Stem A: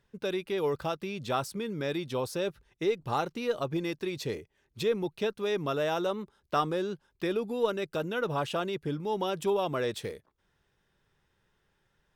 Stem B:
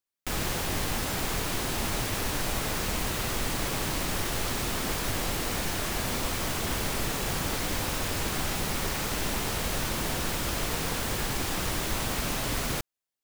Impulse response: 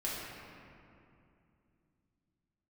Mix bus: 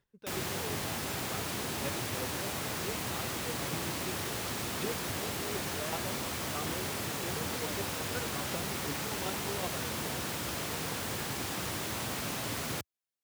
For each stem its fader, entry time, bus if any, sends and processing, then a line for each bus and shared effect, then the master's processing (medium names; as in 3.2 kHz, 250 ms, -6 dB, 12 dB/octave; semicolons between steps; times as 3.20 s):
-5.5 dB, 0.00 s, no send, square tremolo 2.7 Hz, depth 65%, duty 10%
-5.0 dB, 0.00 s, no send, high-pass 79 Hz 24 dB/octave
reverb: none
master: none